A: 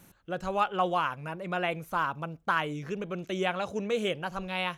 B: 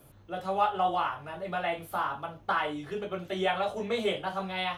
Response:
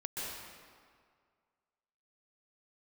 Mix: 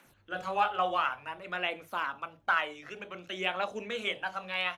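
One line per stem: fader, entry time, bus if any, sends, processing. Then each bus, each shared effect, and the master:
-11.0 dB, 0.00 s, no send, Chebyshev high-pass 220 Hz, order 4; bell 2200 Hz +13 dB 2.9 oct; phaser 0.55 Hz, delay 1.8 ms, feedback 49%
-3.0 dB, 19 ms, polarity flipped, no send, expander -49 dBFS; auto duck -11 dB, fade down 1.75 s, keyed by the first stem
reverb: off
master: dry

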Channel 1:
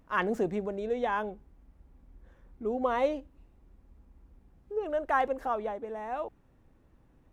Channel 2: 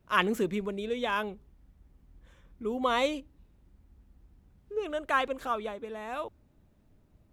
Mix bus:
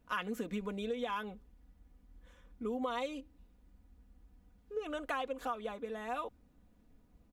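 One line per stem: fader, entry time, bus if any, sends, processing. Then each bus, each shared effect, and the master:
-15.5 dB, 0.00 s, no send, dry
-3.5 dB, 0.3 ms, polarity flipped, no send, comb 4.1 ms, depth 67%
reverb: off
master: compressor 10:1, threshold -33 dBFS, peak gain reduction 12 dB

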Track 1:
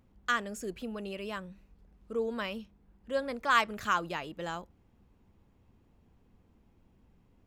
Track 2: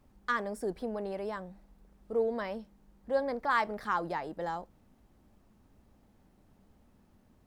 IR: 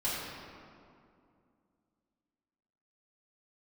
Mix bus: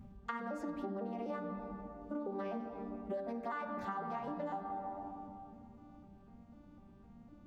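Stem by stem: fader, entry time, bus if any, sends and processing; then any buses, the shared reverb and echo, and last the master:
0.0 dB, 0.00 s, no send, resonant low shelf 290 Hz +11.5 dB, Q 3; compressor, threshold -30 dBFS, peak gain reduction 10.5 dB; limiter -31.5 dBFS, peak gain reduction 11.5 dB; auto duck -10 dB, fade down 0.25 s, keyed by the second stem
+2.5 dB, 0.00 s, send -9 dB, arpeggiated vocoder minor triad, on G3, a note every 0.251 s; bell 130 Hz -9.5 dB 1.2 oct; compressor, threshold -36 dBFS, peak gain reduction 11 dB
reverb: on, RT60 2.4 s, pre-delay 3 ms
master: small resonant body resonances 780/1200 Hz, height 12 dB, ringing for 95 ms; compressor, threshold -37 dBFS, peak gain reduction 9.5 dB

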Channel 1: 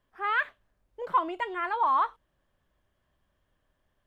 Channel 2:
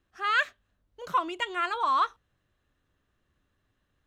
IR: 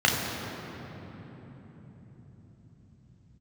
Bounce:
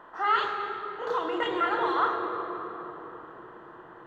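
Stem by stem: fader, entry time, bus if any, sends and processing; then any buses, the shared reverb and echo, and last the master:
-7.5 dB, 0.00 s, send -20.5 dB, per-bin compression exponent 0.4; notch 2200 Hz, Q 7.4
-1.5 dB, 0.00 s, polarity flipped, send -6.5 dB, compressor 1.5:1, threshold -38 dBFS, peak gain reduction 7 dB; LFO high-pass square 2.8 Hz 420–3700 Hz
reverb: on, RT60 4.3 s, pre-delay 3 ms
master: high shelf 2000 Hz -11 dB

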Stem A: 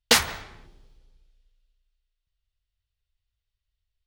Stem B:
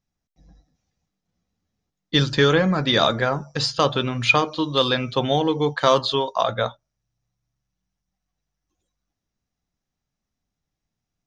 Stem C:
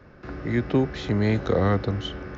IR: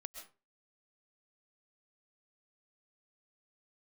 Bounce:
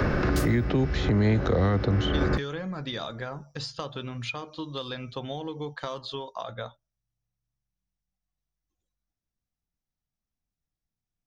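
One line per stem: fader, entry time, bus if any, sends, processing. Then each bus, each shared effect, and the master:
-3.5 dB, 0.25 s, no send, differentiator; auto duck -14 dB, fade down 0.50 s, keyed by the third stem
-11.0 dB, 0.00 s, no send, compressor 5:1, threshold -20 dBFS, peak gain reduction 9 dB
+0.5 dB, 0.00 s, no send, three-band squash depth 100%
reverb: off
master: low shelf 94 Hz +8 dB; limiter -15 dBFS, peak gain reduction 6 dB

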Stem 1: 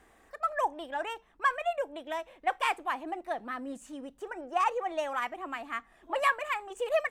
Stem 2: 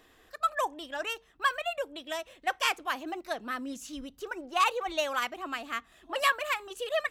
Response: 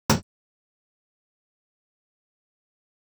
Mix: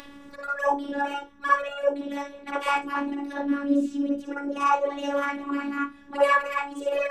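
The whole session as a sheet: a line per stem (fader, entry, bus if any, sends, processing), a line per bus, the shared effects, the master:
0.0 dB, 0.00 s, send -9 dB, bell 770 Hz -11 dB 1 oct
-12.5 dB, 0.00 s, polarity flipped, no send, polynomial smoothing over 15 samples; spectral compressor 10:1; auto duck -12 dB, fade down 0.30 s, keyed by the first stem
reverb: on, pre-delay 47 ms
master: upward compressor, threshold -37 dBFS; robotiser 282 Hz

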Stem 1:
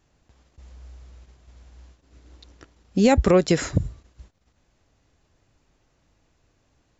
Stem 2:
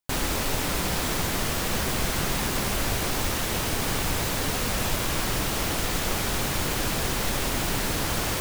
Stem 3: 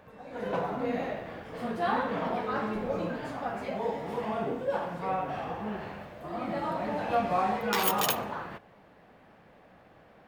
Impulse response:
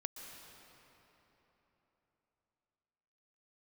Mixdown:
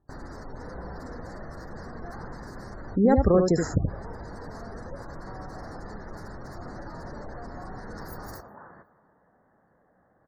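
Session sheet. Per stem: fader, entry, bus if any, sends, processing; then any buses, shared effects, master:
-3.0 dB, 0.00 s, no send, echo send -5 dB, Wiener smoothing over 15 samples
-12.0 dB, 0.00 s, no send, echo send -13 dB, high shelf 3900 Hz -7.5 dB
-10.0 dB, 0.25 s, muted 2.36–3.27, send -9 dB, no echo send, compressor 6:1, threshold -33 dBFS, peak gain reduction 11 dB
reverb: on, RT60 3.8 s, pre-delay 0.113 s
echo: echo 76 ms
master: spectral gate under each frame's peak -25 dB strong; elliptic band-stop 1800–4500 Hz, stop band 60 dB

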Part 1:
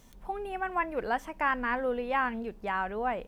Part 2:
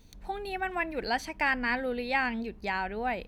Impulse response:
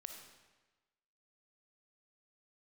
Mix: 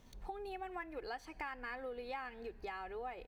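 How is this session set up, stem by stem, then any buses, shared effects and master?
-4.5 dB, 0.00 s, no send, median filter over 5 samples
-9.0 dB, 1.8 ms, send -10.5 dB, gate with hold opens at -46 dBFS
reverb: on, RT60 1.2 s, pre-delay 15 ms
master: compressor 4:1, threshold -43 dBFS, peak gain reduction 15 dB

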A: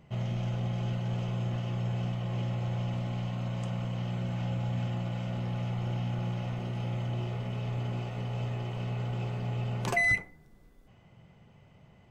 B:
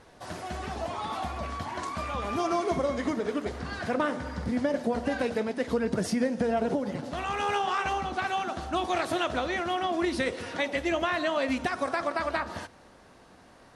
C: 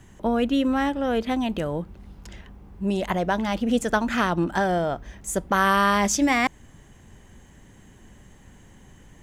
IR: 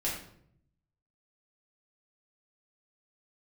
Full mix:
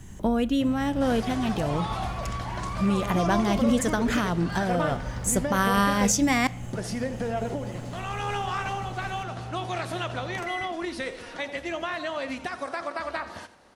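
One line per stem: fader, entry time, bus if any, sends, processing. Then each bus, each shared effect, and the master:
+0.5 dB, 0.50 s, no send, no echo send, compressor 2.5:1, threshold -39 dBFS, peak gain reduction 11 dB
-1.5 dB, 0.80 s, muted 6.11–6.73, no send, echo send -15.5 dB, low shelf 360 Hz -5 dB; vocal rider within 4 dB 2 s
+2.5 dB, 0.00 s, send -22 dB, no echo send, tone controls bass +7 dB, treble +7 dB; compressor 2:1, threshold -23 dBFS, peak gain reduction 5.5 dB; noise-modulated level, depth 60%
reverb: on, RT60 0.65 s, pre-delay 4 ms
echo: echo 86 ms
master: dry

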